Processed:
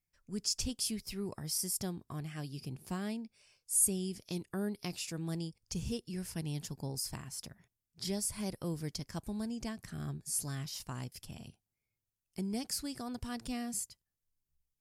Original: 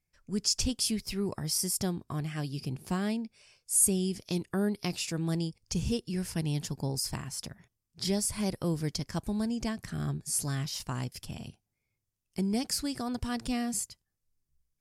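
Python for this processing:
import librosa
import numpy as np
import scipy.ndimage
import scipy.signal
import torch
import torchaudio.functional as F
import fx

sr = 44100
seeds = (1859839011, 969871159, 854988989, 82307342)

y = fx.high_shelf(x, sr, hz=11000.0, db=7.5)
y = F.gain(torch.from_numpy(y), -7.0).numpy()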